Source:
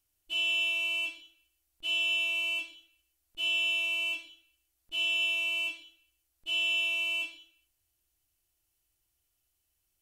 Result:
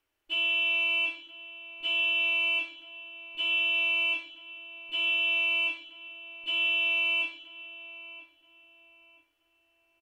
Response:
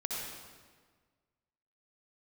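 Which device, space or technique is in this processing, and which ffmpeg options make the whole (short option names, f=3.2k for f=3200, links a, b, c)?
DJ mixer with the lows and highs turned down: -filter_complex "[0:a]acrossover=split=270 3500:gain=0.178 1 0.1[a][b][c];[a][b][c]amix=inputs=3:normalize=0,equalizer=f=3.8k:t=o:w=0.96:g=-3.5,bandreject=f=700:w=12,alimiter=level_in=6.5dB:limit=-24dB:level=0:latency=1:release=125,volume=-6.5dB,asplit=2[d][e];[e]adelay=21,volume=-9.5dB[f];[d][f]amix=inputs=2:normalize=0,asplit=2[g][h];[h]adelay=975,lowpass=f=1.8k:p=1,volume=-13dB,asplit=2[i][j];[j]adelay=975,lowpass=f=1.8k:p=1,volume=0.38,asplit=2[k][l];[l]adelay=975,lowpass=f=1.8k:p=1,volume=0.38,asplit=2[m][n];[n]adelay=975,lowpass=f=1.8k:p=1,volume=0.38[o];[g][i][k][m][o]amix=inputs=5:normalize=0,volume=9dB"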